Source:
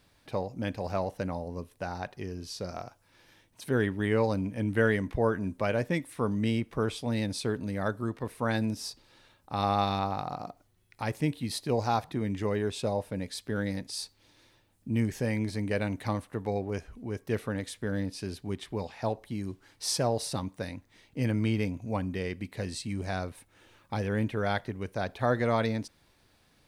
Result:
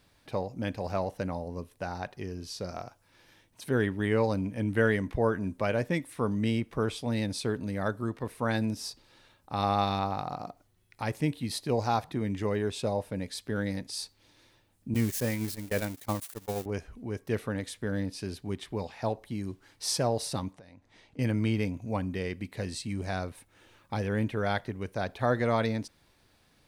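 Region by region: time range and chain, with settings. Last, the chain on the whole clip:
0:14.94–0:16.66: spike at every zero crossing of −25 dBFS + noise gate −30 dBFS, range −53 dB + level that may fall only so fast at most 100 dB per second
0:20.53–0:21.19: low-pass filter 7,500 Hz + parametric band 730 Hz +5 dB 1.1 octaves + downward compressor, threshold −50 dBFS
whole clip: no processing

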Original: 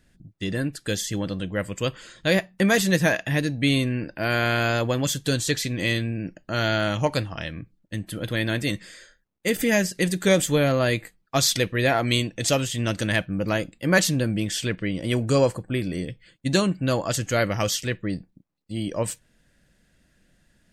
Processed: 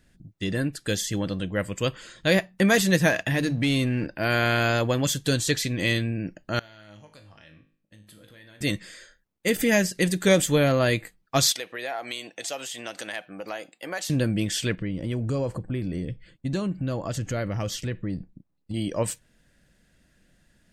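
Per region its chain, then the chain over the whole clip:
0:03.10–0:04.07: mains-hum notches 50/100/150 Hz + leveller curve on the samples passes 1 + downward compressor 3 to 1, threshold −21 dBFS
0:06.59–0:08.61: downward compressor 4 to 1, threshold −40 dBFS + low-shelf EQ 360 Hz −4.5 dB + tuned comb filter 52 Hz, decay 0.48 s, mix 80%
0:11.52–0:14.10: high-pass filter 490 Hz + parametric band 760 Hz +8.5 dB 0.27 octaves + downward compressor 2.5 to 1, threshold −33 dBFS
0:14.78–0:18.74: spectral tilt −2 dB per octave + downward compressor 2.5 to 1, threshold −28 dBFS
whole clip: no processing

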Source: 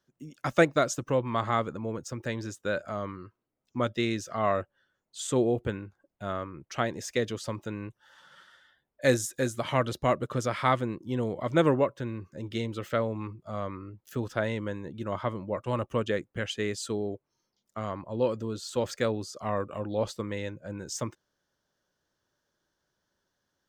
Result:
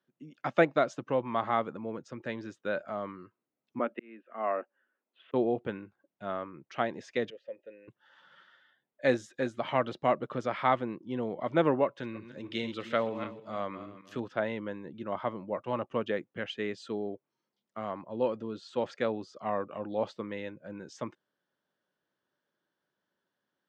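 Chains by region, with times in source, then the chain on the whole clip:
0:03.79–0:05.34: Chebyshev band-pass filter 230–2,700 Hz, order 4 + volume swells 680 ms
0:07.30–0:07.88: formant filter e + dynamic equaliser 540 Hz, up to +3 dB, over −47 dBFS, Q 0.78
0:11.86–0:14.20: feedback delay that plays each chunk backwards 154 ms, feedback 47%, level −11 dB + high-shelf EQ 2,300 Hz +10.5 dB
whole clip: dynamic equaliser 770 Hz, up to +6 dB, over −42 dBFS, Q 2.2; Chebyshev band-pass filter 190–3,000 Hz, order 2; level −3 dB

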